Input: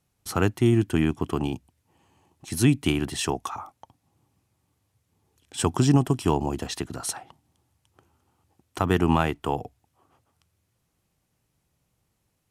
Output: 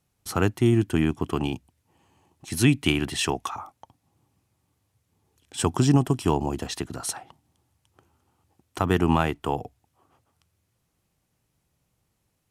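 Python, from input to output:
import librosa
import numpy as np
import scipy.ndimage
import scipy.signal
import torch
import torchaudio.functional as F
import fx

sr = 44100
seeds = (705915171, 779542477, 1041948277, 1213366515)

y = fx.dynamic_eq(x, sr, hz=2500.0, q=0.91, threshold_db=-44.0, ratio=4.0, max_db=5, at=(1.27, 3.51))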